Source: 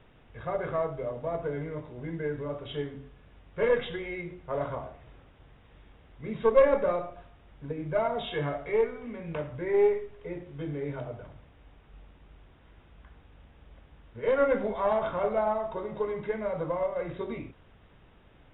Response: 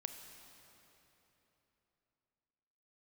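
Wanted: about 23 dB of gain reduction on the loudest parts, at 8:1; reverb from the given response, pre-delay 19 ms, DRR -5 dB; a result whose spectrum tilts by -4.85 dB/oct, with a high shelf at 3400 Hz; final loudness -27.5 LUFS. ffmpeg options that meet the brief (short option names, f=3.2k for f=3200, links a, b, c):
-filter_complex "[0:a]highshelf=f=3.4k:g=-9,acompressor=threshold=-39dB:ratio=8,asplit=2[a][b];[1:a]atrim=start_sample=2205,adelay=19[c];[b][c]afir=irnorm=-1:irlink=0,volume=7.5dB[d];[a][d]amix=inputs=2:normalize=0,volume=10.5dB"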